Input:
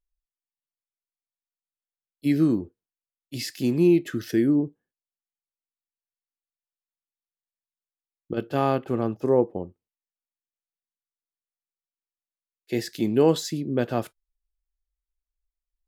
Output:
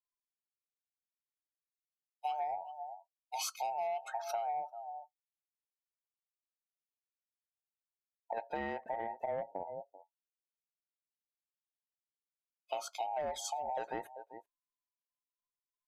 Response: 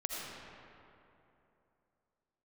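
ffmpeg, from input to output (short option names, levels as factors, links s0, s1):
-af "afftfilt=real='real(if(between(b,1,1008),(2*floor((b-1)/48)+1)*48-b,b),0)':imag='imag(if(between(b,1,1008),(2*floor((b-1)/48)+1)*48-b,b),0)*if(between(b,1,1008),-1,1)':win_size=2048:overlap=0.75,aecho=1:1:389:0.106,asoftclip=type=hard:threshold=0.335,afftdn=nr=23:nf=-44,asoftclip=type=tanh:threshold=0.251,equalizer=f=4400:w=2.2:g=-6.5,acompressor=threshold=0.0355:ratio=10,highshelf=f=2200:g=6,volume=0.531"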